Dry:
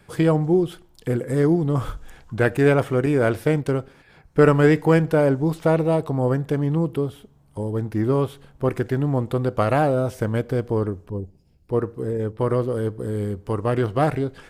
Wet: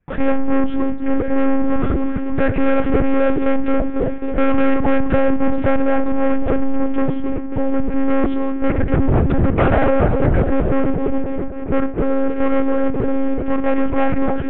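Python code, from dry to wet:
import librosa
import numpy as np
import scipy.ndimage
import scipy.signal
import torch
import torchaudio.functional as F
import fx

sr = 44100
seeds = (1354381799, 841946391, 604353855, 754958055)

y = fx.octave_divider(x, sr, octaves=1, level_db=-1.0, at=(8.7, 10.48))
y = fx.low_shelf(y, sr, hz=190.0, db=4.0)
y = fx.echo_bbd(y, sr, ms=271, stages=2048, feedback_pct=61, wet_db=-10.5)
y = fx.leveller(y, sr, passes=5)
y = fx.lpc_monotone(y, sr, seeds[0], pitch_hz=270.0, order=10)
y = scipy.signal.sosfilt(scipy.signal.butter(4, 2500.0, 'lowpass', fs=sr, output='sos'), y)
y = fx.peak_eq(y, sr, hz=1000.0, db=-3.5, octaves=0.48)
y = fx.band_squash(y, sr, depth_pct=70, at=(4.54, 5.48))
y = y * 10.0 ** (-6.5 / 20.0)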